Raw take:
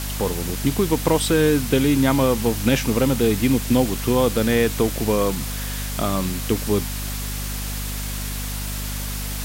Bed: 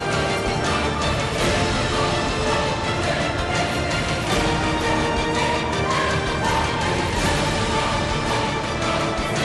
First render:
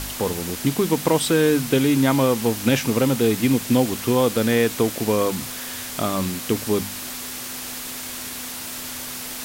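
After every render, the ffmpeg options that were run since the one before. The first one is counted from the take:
-af "bandreject=f=50:t=h:w=4,bandreject=f=100:t=h:w=4,bandreject=f=150:t=h:w=4,bandreject=f=200:t=h:w=4"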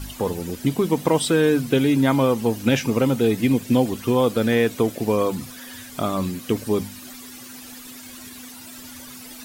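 -af "afftdn=nr=13:nf=-33"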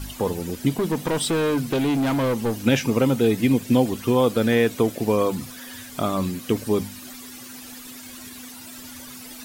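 -filter_complex "[0:a]asettb=1/sr,asplit=3[a][b][c];[a]atrim=end=0.704[d];[b]atrim=start=0.7:end=2.6,asetpts=PTS-STARTPTS,afade=t=in:d=0.004:c=qsin,afade=t=out:st=1.896:d=0.004:c=qsin,asoftclip=type=hard:threshold=-19dB[e];[c]atrim=start=2.596[f];[d][e]acrossfade=d=0.004:c1=hsin:c2=qsin[g];[g][f]acrossfade=d=0.004:c1=qsin:c2=hsin,asettb=1/sr,asplit=3[h][i][j];[h]atrim=end=5.314[k];[i]atrim=start=5.31:end=5.96,asetpts=PTS-STARTPTS,afade=t=in:d=0.004:c=qsin,afade=t=out:st=0.646:d=0.004:c=qsin,aeval=exprs='val(0)*gte(abs(val(0)),0.00398)':c=same[l];[j]atrim=start=5.956[m];[k][l]acrossfade=d=0.004:c1=hsin:c2=qsin[n];[n][m]acrossfade=d=0.004:c1=qsin:c2=hsin"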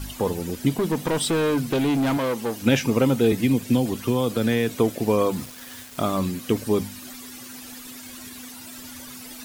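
-filter_complex "[0:a]asettb=1/sr,asplit=3[a][b][c];[a]atrim=end=2.174[d];[b]atrim=start=2.17:end=2.62,asetpts=PTS-STARTPTS,afade=t=in:d=0.004:c=qsin,afade=t=out:st=0.446:d=0.004:c=qsin,highpass=f=330:p=1[e];[c]atrim=start=2.616[f];[d][e]acrossfade=d=0.004:c1=hsin:c2=qsin[g];[g][f]acrossfade=d=0.004:c1=qsin:c2=hsin,asettb=1/sr,asplit=3[h][i][j];[h]atrim=end=3.324[k];[i]atrim=start=3.32:end=4.69,asetpts=PTS-STARTPTS,afade=t=in:d=0.004:c=qsin,afade=t=out:st=1.366:d=0.004:c=qsin,acrossover=split=240|3000[l][m][n];[m]acompressor=threshold=-21dB:ratio=6:attack=3.2:release=140:knee=2.83:detection=peak[o];[l][o][n]amix=inputs=3:normalize=0[p];[j]atrim=start=4.686[q];[k][p]acrossfade=d=0.004:c1=hsin:c2=qsin[r];[r][q]acrossfade=d=0.004:c1=qsin:c2=hsin,asettb=1/sr,asplit=3[s][t][u];[s]atrim=end=5.354[v];[t]atrim=start=5.35:end=6.2,asetpts=PTS-STARTPTS,afade=t=in:d=0.004:c=qsin,afade=t=out:st=0.846:d=0.004:c=qsin,aeval=exprs='val(0)*gte(abs(val(0)),0.0158)':c=same[w];[u]atrim=start=6.196[x];[v][w]acrossfade=d=0.004:c1=hsin:c2=qsin[y];[y][x]acrossfade=d=0.004:c1=qsin:c2=hsin"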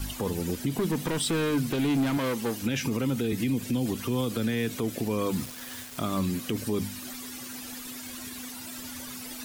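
-filter_complex "[0:a]acrossover=split=410|1100[a][b][c];[b]acompressor=threshold=-36dB:ratio=6[d];[a][d][c]amix=inputs=3:normalize=0,alimiter=limit=-19dB:level=0:latency=1:release=67"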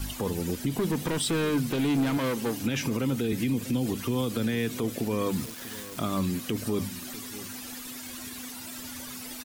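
-filter_complex "[0:a]asplit=2[a][b];[b]adelay=641.4,volume=-16dB,highshelf=f=4k:g=-14.4[c];[a][c]amix=inputs=2:normalize=0"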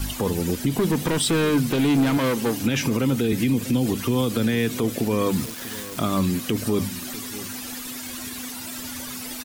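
-af "volume=6dB"

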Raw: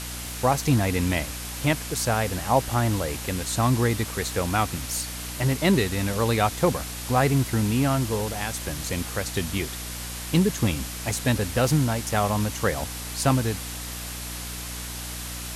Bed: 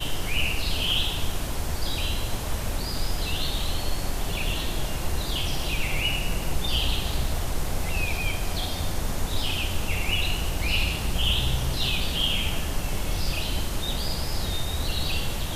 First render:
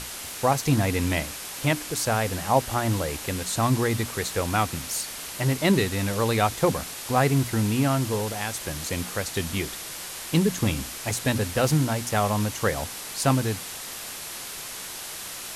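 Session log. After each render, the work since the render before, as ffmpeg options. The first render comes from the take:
-af "bandreject=f=60:t=h:w=6,bandreject=f=120:t=h:w=6,bandreject=f=180:t=h:w=6,bandreject=f=240:t=h:w=6,bandreject=f=300:t=h:w=6"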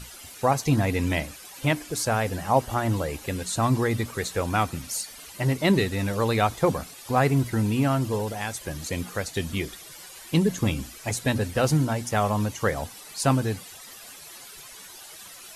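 -af "afftdn=nr=13:nf=-37"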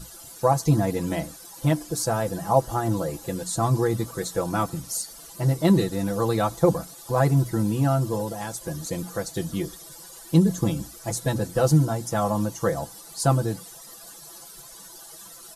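-af "equalizer=f=2.4k:t=o:w=1.1:g=-14,aecho=1:1:6:0.76"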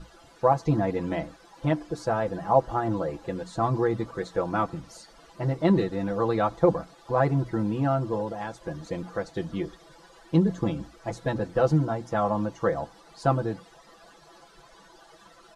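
-af "lowpass=2.6k,equalizer=f=120:t=o:w=1.6:g=-6"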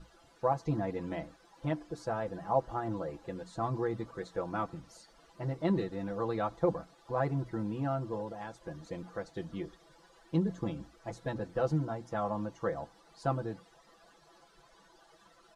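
-af "volume=-8.5dB"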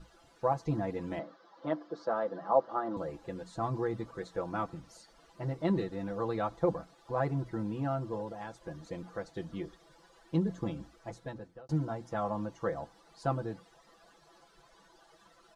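-filter_complex "[0:a]asettb=1/sr,asplit=3[a][b][c];[a]atrim=end=1.194[d];[b]atrim=start=1.19:end=2.97,asetpts=PTS-STARTPTS,afade=t=in:d=0.004:c=qsin,afade=t=out:st=1.776:d=0.004:c=qsin,highpass=f=200:w=0.5412,highpass=f=200:w=1.3066,equalizer=f=570:t=q:w=4:g=6,equalizer=f=1.2k:t=q:w=4:g=7,equalizer=f=2.5k:t=q:w=4:g=-10,lowpass=f=4.9k:w=0.5412,lowpass=f=4.9k:w=1.3066[e];[c]atrim=start=2.966[f];[d][e]acrossfade=d=0.004:c1=hsin:c2=qsin[g];[g][f]acrossfade=d=0.004:c1=qsin:c2=hsin,asplit=2[h][i];[h]atrim=end=11.69,asetpts=PTS-STARTPTS,afade=t=out:st=10.94:d=0.75[j];[i]atrim=start=11.69,asetpts=PTS-STARTPTS,afade=t=in:d=0.004:c=hsin[k];[j][k]concat=n=2:v=0:a=1"

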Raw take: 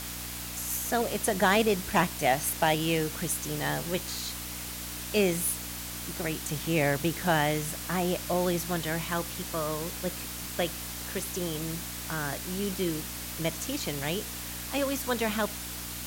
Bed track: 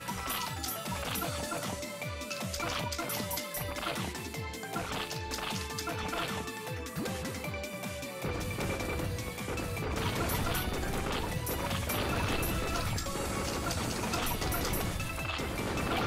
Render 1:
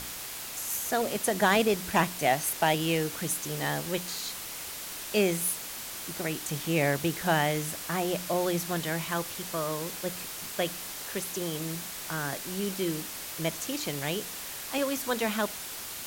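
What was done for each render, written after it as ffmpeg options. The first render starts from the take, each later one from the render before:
-af "bandreject=f=60:t=h:w=4,bandreject=f=120:t=h:w=4,bandreject=f=180:t=h:w=4,bandreject=f=240:t=h:w=4,bandreject=f=300:t=h:w=4"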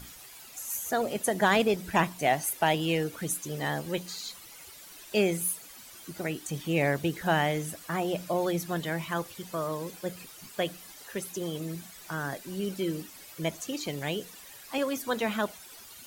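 -af "afftdn=nr=13:nf=-39"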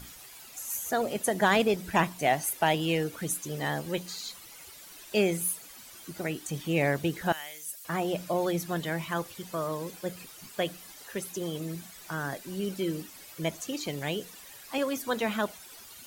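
-filter_complex "[0:a]asettb=1/sr,asplit=3[a][b][c];[a]atrim=end=7.324[d];[b]atrim=start=7.32:end=7.85,asetpts=PTS-STARTPTS,afade=t=in:d=0.004:c=qsin,afade=t=out:st=0.526:d=0.004:c=qsin,aderivative[e];[c]atrim=start=7.846[f];[d][e]acrossfade=d=0.004:c1=hsin:c2=qsin[g];[g][f]acrossfade=d=0.004:c1=qsin:c2=hsin"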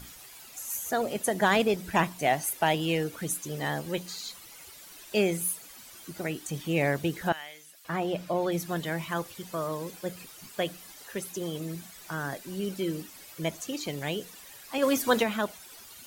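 -filter_complex "[0:a]asettb=1/sr,asplit=3[a][b][c];[a]atrim=end=7.294[d];[b]atrim=start=7.29:end=8.52,asetpts=PTS-STARTPTS,afade=t=in:d=0.004:c=qsin,afade=t=out:st=1.226:d=0.004:c=qsin,acrossover=split=4600[e][f];[f]acompressor=threshold=-54dB:ratio=4:attack=1:release=60[g];[e][g]amix=inputs=2:normalize=0[h];[c]atrim=start=8.516[i];[d][h]acrossfade=d=0.004:c1=hsin:c2=qsin[j];[j][i]acrossfade=d=0.004:c1=qsin:c2=hsin,asplit=3[k][l][m];[k]afade=t=out:st=14.82:d=0.02[n];[l]acontrast=71,afade=t=in:st=14.82:d=0.02,afade=t=out:st=15.22:d=0.02[o];[m]afade=t=in:st=15.22:d=0.02[p];[n][o][p]amix=inputs=3:normalize=0"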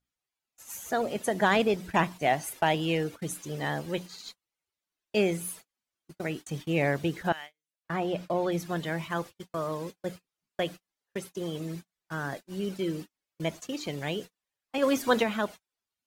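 -af "agate=range=-39dB:threshold=-38dB:ratio=16:detection=peak,highshelf=f=8.4k:g=-11.5"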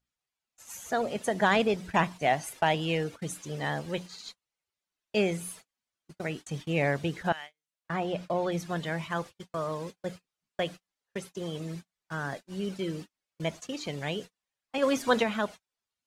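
-af "lowpass=9.8k,equalizer=f=330:t=o:w=0.48:g=-4"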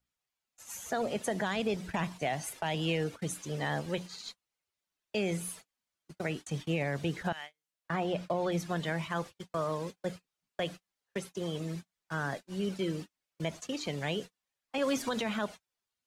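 -filter_complex "[0:a]acrossover=split=210|3000[a][b][c];[b]acompressor=threshold=-26dB:ratio=6[d];[a][d][c]amix=inputs=3:normalize=0,alimiter=limit=-21.5dB:level=0:latency=1:release=56"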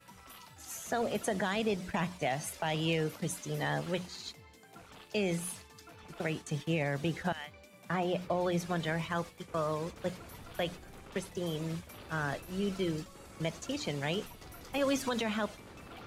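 -filter_complex "[1:a]volume=-17.5dB[a];[0:a][a]amix=inputs=2:normalize=0"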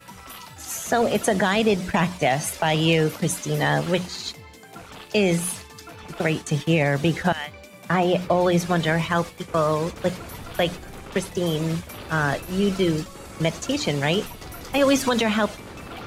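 -af "volume=12dB"

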